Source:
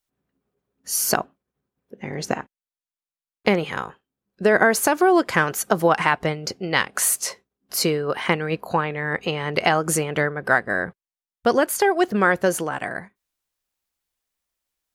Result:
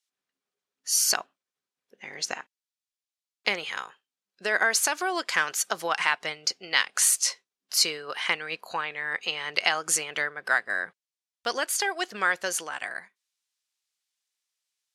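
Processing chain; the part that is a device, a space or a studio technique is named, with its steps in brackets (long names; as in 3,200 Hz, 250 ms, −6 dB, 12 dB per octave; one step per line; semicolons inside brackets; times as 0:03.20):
piezo pickup straight into a mixer (low-pass filter 5,300 Hz 12 dB per octave; first difference)
level +9 dB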